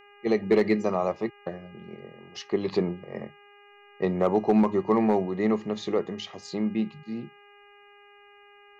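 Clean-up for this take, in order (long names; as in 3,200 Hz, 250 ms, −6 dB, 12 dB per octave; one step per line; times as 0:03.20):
clipped peaks rebuilt −13 dBFS
hum removal 407.6 Hz, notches 7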